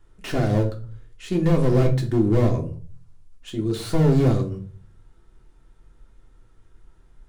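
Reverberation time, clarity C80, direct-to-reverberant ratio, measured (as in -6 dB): 0.40 s, 17.0 dB, 1.0 dB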